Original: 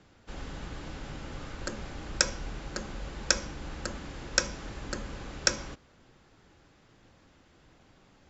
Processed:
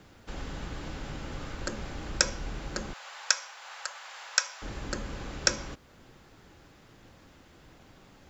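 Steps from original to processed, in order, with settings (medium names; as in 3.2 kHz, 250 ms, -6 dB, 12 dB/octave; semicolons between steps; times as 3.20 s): 2.93–4.62 s: inverse Chebyshev high-pass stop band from 290 Hz, stop band 50 dB; in parallel at -2.5 dB: compression 4:1, threshold -47 dBFS, peak gain reduction 23.5 dB; on the sum: word length cut 12-bit, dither none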